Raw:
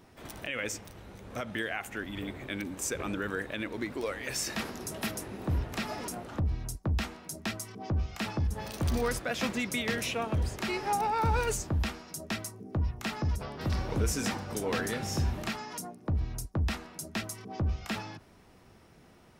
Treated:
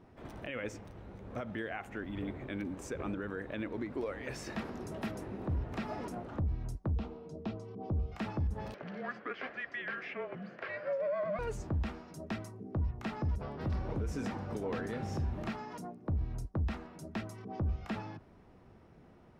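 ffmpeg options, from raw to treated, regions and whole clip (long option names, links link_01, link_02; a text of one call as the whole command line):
ffmpeg -i in.wav -filter_complex "[0:a]asettb=1/sr,asplit=3[link_01][link_02][link_03];[link_01]atrim=end=6.964[link_04];[link_02]atrim=start=6.96:end=8.12,asetpts=PTS-STARTPTS,afade=type=in:duration=0.004:curve=qsin,afade=type=out:start_time=1.156:duration=0.004:curve=qsin,lowpass=3900,equalizer=frequency=1800:width_type=o:width=0.93:gain=-13.5,aeval=exprs='val(0)+0.00447*sin(2*PI*460*n/s)':channel_layout=same[link_05];[link_03]atrim=start=8.116[link_06];[link_04][link_05]acrossfade=duration=0.004:curve1=hsin:curve2=qsin[link_07];[link_07][link_06]acrossfade=duration=0.004:curve1=qsin:curve2=hsin,asettb=1/sr,asplit=3[link_08][link_09][link_10];[link_08]atrim=end=8.744[link_11];[link_09]atrim=start=8.74:end=11.39,asetpts=PTS-STARTPTS,afade=type=in:duration=0.004:curve=qsin,afade=type=out:start_time=2.646:duration=0.004:curve=qsin,afreqshift=-260,highpass=480,equalizer=frequency=590:width_type=q:width=4:gain=3,equalizer=frequency=930:width_type=q:width=4:gain=-10,equalizer=frequency=1700:width_type=q:width=4:gain=6,equalizer=frequency=3700:width_type=q:width=4:gain=-8,lowpass=frequency=3900:width=0.5412,lowpass=frequency=3900:width=1.3066[link_12];[link_10]atrim=start=11.386[link_13];[link_11][link_12]acrossfade=duration=0.004:curve1=hsin:curve2=qsin[link_14];[link_14][link_13]acrossfade=duration=0.004:curve1=qsin:curve2=hsin,lowpass=frequency=1000:poles=1,alimiter=level_in=3.5dB:limit=-24dB:level=0:latency=1:release=144,volume=-3.5dB" out.wav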